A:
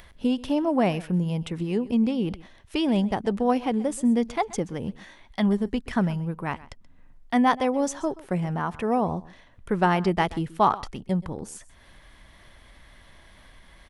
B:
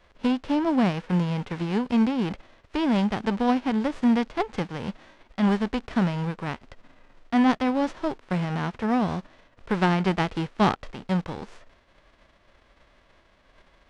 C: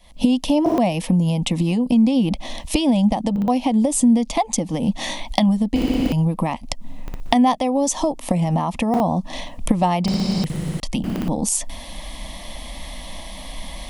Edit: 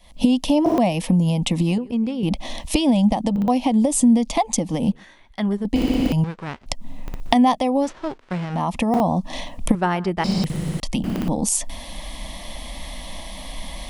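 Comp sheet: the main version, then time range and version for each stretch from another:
C
1.78–2.23 from A
4.92–5.65 from A
6.24–6.66 from B
7.85–8.57 from B, crossfade 0.10 s
9.75–10.24 from A

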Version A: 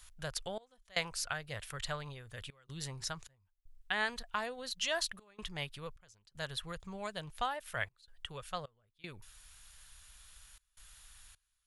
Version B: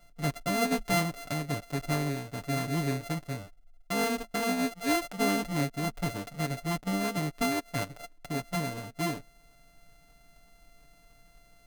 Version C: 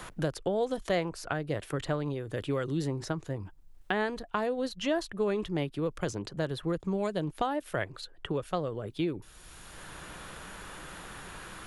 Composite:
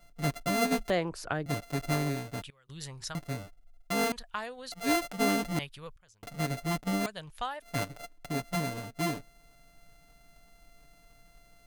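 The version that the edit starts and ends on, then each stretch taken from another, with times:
B
0.9–1.46 from C
2.42–3.15 from A
4.12–4.72 from A
5.59–6.23 from A
7.06–7.62 from A

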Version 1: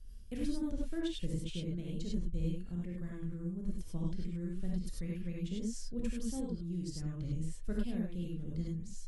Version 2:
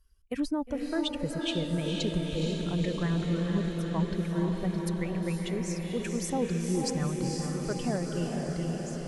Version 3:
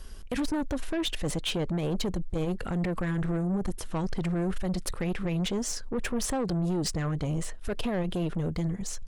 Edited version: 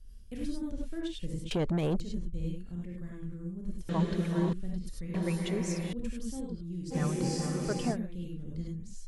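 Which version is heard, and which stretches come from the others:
1
1.51–2 from 3
3.89–4.53 from 2
5.14–5.93 from 2
6.93–7.94 from 2, crossfade 0.06 s

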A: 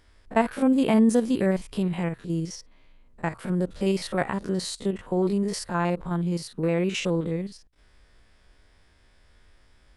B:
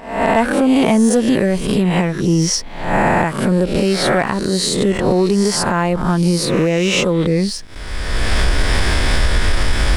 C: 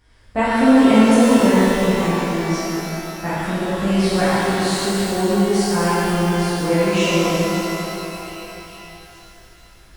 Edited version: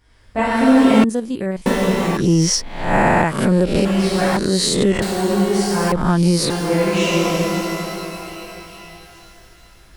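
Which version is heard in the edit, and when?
C
1.04–1.66 from A
2.17–3.85 from B
4.37–5.02 from B
5.92–6.5 from B

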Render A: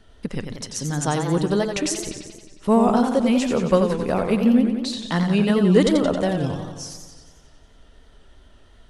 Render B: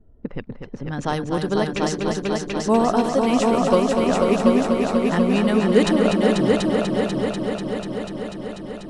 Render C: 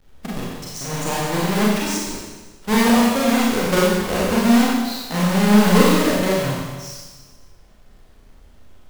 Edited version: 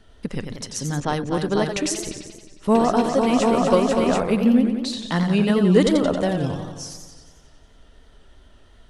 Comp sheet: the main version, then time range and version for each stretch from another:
A
1–1.69 from B
2.75–4.2 from B
not used: C

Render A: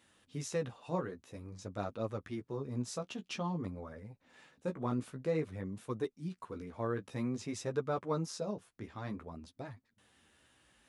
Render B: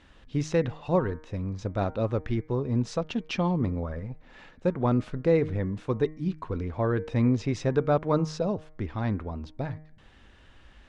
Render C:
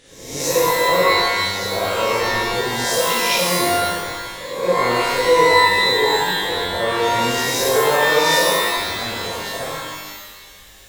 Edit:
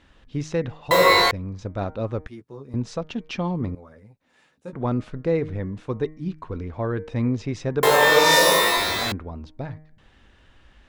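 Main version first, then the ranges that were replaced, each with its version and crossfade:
B
0.91–1.31 from C
2.27–2.74 from A
3.75–4.73 from A
7.83–9.12 from C

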